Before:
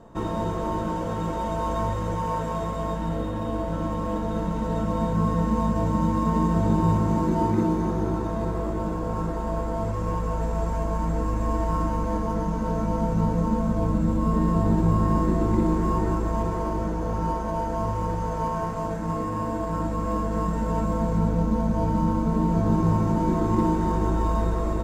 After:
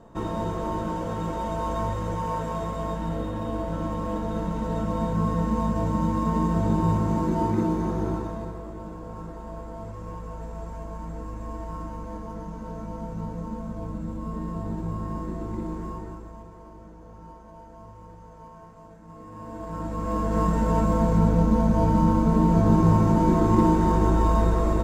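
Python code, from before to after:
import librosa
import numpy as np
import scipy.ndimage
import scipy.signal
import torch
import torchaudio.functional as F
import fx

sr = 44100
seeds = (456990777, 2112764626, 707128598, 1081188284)

y = fx.gain(x, sr, db=fx.line((8.12, -1.5), (8.62, -10.0), (15.83, -10.0), (16.47, -19.0), (19.06, -19.0), (19.64, -7.5), (20.41, 3.0)))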